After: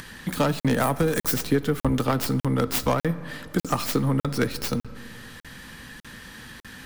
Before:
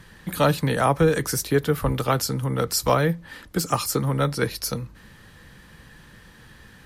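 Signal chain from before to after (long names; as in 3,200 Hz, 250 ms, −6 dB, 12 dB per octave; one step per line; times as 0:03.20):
stylus tracing distortion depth 0.27 ms
0:00.80–0:01.34: high-shelf EQ 6,400 Hz +11.5 dB
downward compressor, threshold −19 dBFS, peak gain reduction 6.5 dB
convolution reverb RT60 2.2 s, pre-delay 15 ms, DRR 16.5 dB
upward compression, threshold −42 dBFS
parametric band 250 Hz +9.5 dB 0.39 octaves
regular buffer underruns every 0.60 s, samples 2,048, zero, from 0:00.60
one half of a high-frequency compander encoder only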